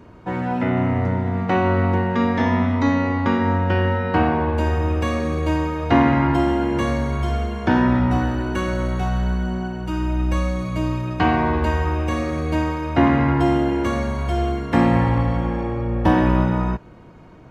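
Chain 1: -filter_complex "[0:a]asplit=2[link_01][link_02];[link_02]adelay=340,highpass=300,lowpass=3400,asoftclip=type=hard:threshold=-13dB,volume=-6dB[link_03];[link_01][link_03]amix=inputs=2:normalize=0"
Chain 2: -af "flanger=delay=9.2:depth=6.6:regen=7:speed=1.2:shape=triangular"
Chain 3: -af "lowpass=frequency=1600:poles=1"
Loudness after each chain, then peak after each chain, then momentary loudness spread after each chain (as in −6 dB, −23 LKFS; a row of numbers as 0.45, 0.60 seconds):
−20.5, −23.5, −21.0 LKFS; −3.5, −4.5, −4.0 dBFS; 7, 7, 7 LU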